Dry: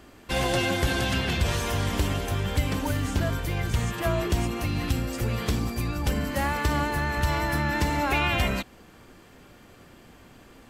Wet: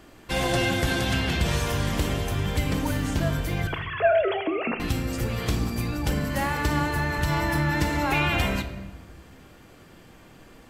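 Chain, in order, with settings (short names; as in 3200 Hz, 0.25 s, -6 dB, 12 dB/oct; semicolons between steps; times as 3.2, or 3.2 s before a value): 3.67–4.8 sine-wave speech; shoebox room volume 630 m³, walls mixed, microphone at 0.61 m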